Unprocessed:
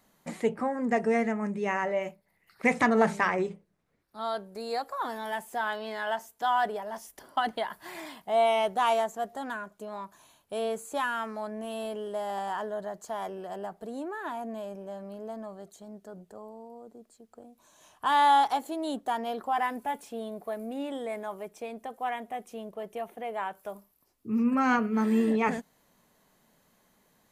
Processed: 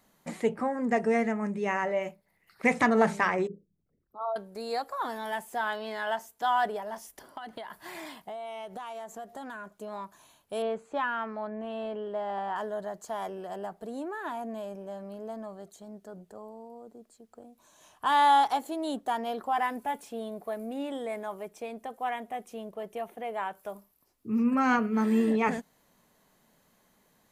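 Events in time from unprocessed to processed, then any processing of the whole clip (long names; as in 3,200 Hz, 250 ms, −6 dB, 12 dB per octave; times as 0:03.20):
0:03.47–0:04.36: spectral envelope exaggerated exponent 3
0:06.94–0:09.76: downward compressor 16 to 1, threshold −36 dBFS
0:10.62–0:12.56: low-pass filter 2,700 Hz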